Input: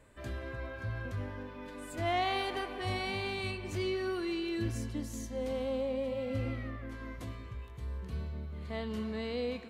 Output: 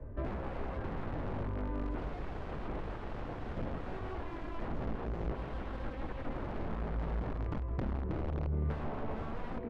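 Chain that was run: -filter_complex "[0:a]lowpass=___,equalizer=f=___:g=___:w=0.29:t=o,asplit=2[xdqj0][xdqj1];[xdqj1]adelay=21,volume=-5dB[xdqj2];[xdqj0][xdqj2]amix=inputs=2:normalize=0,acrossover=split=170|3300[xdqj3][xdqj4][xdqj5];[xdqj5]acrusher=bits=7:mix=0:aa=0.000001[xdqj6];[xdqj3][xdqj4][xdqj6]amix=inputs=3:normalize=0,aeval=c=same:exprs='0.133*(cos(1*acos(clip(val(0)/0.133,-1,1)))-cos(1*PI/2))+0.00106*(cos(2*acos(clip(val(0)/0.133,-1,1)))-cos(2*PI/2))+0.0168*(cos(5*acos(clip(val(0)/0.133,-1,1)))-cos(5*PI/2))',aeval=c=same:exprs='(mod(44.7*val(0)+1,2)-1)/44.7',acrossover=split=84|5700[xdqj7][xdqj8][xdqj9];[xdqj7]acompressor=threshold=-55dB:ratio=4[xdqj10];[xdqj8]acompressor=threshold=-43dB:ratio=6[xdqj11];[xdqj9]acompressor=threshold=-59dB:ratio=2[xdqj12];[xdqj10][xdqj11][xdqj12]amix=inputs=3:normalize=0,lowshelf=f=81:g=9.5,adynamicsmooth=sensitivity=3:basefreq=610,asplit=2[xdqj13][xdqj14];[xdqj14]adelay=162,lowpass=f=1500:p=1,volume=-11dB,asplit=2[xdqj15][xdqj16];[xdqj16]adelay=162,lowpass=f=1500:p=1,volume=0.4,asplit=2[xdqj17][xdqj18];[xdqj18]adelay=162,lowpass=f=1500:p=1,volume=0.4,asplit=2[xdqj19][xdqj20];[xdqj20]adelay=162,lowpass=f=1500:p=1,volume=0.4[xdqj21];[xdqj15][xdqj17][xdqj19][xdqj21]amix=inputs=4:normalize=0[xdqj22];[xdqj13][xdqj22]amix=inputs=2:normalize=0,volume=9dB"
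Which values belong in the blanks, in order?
9200, 190, -9.5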